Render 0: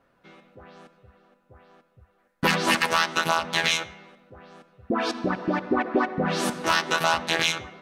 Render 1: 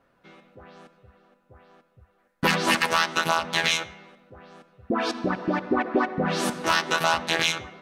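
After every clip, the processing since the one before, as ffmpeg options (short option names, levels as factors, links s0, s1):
-af anull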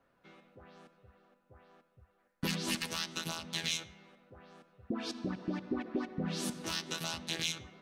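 -filter_complex "[0:a]acrossover=split=330|3000[s0][s1][s2];[s1]acompressor=threshold=0.00355:ratio=2[s3];[s0][s3][s2]amix=inputs=3:normalize=0,volume=0.447"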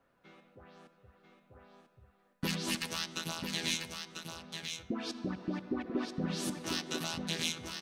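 -af "aecho=1:1:993:0.501"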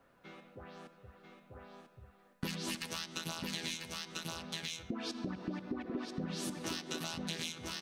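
-af "acompressor=threshold=0.00891:ratio=6,volume=1.78"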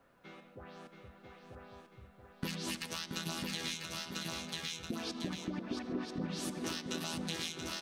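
-af "aecho=1:1:679:0.501"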